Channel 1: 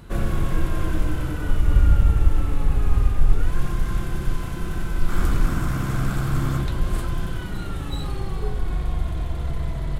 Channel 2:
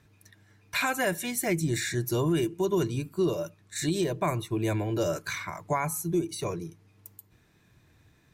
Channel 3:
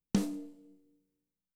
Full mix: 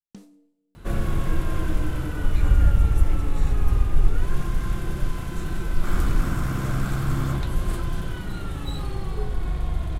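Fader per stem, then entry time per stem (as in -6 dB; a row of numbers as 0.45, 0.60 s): -1.5, -17.5, -15.5 dB; 0.75, 1.60, 0.00 s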